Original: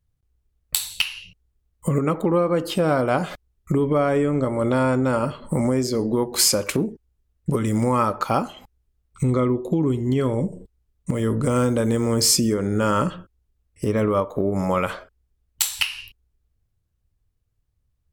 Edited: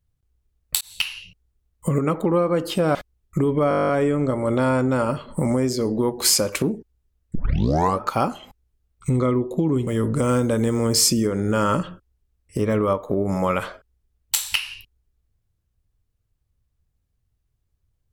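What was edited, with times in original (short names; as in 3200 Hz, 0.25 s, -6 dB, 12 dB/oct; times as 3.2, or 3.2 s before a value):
0.81–1.14 fade in equal-power
2.95–3.29 cut
4.03 stutter 0.02 s, 11 plays
7.49 tape start 0.65 s
10.01–11.14 cut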